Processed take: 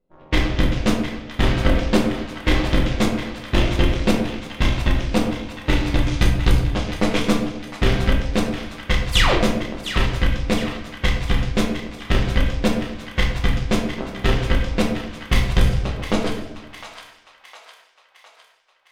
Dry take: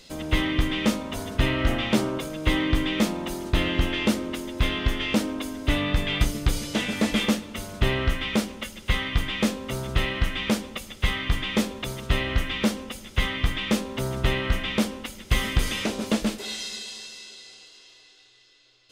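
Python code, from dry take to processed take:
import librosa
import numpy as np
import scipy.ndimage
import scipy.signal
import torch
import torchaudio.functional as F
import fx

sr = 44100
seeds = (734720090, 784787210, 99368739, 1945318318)

p1 = fx.spec_paint(x, sr, seeds[0], shape='fall', start_s=9.1, length_s=0.26, low_hz=270.0, high_hz=7100.0, level_db=-20.0)
p2 = fx.high_shelf(p1, sr, hz=4300.0, db=-5.5)
p3 = fx.env_lowpass(p2, sr, base_hz=770.0, full_db=-18.0)
p4 = fx.cheby_harmonics(p3, sr, harmonics=(5, 6, 7, 8), levels_db=(-42, -19, -16, -35), full_scale_db=-7.5)
p5 = p4 + fx.echo_split(p4, sr, split_hz=750.0, low_ms=126, high_ms=708, feedback_pct=52, wet_db=-10.0, dry=0)
p6 = fx.room_shoebox(p5, sr, seeds[1], volume_m3=130.0, walls='mixed', distance_m=1.0)
y = p6 * 10.0 ** (1.5 / 20.0)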